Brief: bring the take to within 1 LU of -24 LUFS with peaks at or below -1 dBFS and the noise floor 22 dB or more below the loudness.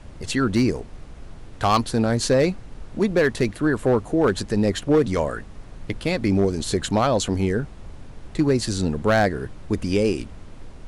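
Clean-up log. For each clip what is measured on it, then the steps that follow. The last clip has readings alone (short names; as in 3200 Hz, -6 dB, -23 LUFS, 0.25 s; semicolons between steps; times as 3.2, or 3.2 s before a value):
clipped 0.6%; flat tops at -11.5 dBFS; noise floor -41 dBFS; noise floor target -44 dBFS; loudness -22.0 LUFS; peak -11.5 dBFS; loudness target -24.0 LUFS
-> clip repair -11.5 dBFS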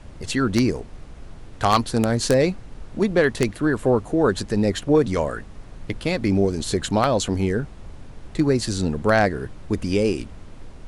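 clipped 0.0%; noise floor -41 dBFS; noise floor target -44 dBFS
-> noise print and reduce 6 dB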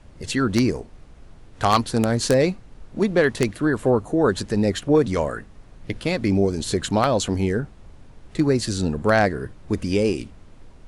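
noise floor -47 dBFS; loudness -22.0 LUFS; peak -2.5 dBFS; loudness target -24.0 LUFS
-> gain -2 dB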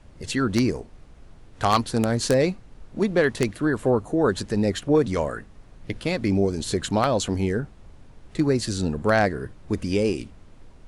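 loudness -24.0 LUFS; peak -4.5 dBFS; noise floor -49 dBFS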